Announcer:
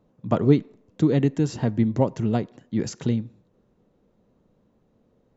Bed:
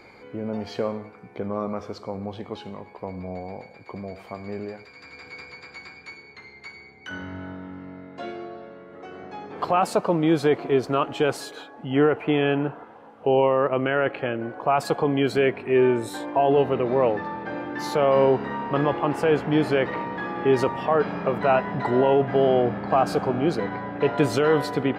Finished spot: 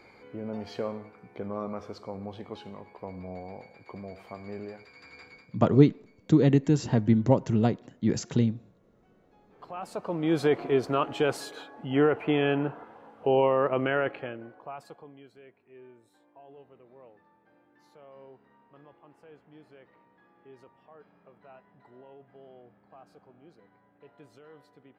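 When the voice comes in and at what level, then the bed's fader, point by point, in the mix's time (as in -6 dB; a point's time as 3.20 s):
5.30 s, -0.5 dB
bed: 5.23 s -6 dB
5.63 s -27.5 dB
9.35 s -27.5 dB
10.39 s -3.5 dB
13.95 s -3.5 dB
15.34 s -32.5 dB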